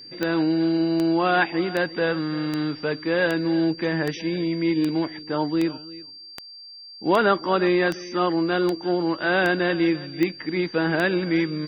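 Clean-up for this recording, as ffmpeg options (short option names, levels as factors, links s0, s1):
-af "adeclick=t=4,bandreject=f=4700:w=30"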